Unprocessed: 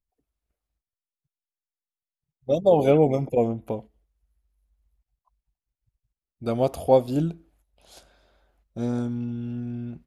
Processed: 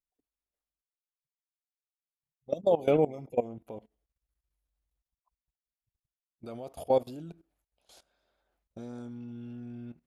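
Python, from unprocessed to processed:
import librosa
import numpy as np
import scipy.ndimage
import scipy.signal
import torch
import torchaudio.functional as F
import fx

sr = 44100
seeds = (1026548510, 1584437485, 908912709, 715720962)

y = fx.level_steps(x, sr, step_db=18)
y = fx.low_shelf(y, sr, hz=160.0, db=-9.0)
y = y * librosa.db_to_amplitude(-2.5)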